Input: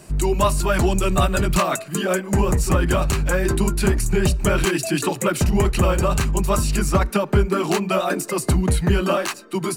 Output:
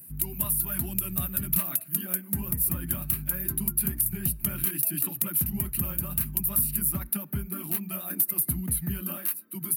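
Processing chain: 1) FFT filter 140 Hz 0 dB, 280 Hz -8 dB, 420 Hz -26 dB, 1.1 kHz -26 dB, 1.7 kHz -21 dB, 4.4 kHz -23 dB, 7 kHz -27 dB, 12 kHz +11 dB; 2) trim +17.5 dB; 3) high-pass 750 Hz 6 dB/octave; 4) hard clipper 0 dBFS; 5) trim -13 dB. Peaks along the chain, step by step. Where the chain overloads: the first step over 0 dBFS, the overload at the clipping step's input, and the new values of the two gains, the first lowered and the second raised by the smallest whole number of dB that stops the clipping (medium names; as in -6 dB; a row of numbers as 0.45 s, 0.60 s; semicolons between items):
-8.0 dBFS, +9.5 dBFS, +7.0 dBFS, 0.0 dBFS, -13.0 dBFS; step 2, 7.0 dB; step 2 +10.5 dB, step 5 -6 dB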